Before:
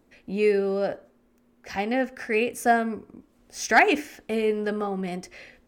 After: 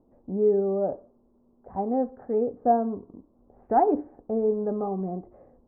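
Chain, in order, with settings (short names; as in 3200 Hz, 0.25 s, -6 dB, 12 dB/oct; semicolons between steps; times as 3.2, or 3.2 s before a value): steep low-pass 1000 Hz 36 dB/oct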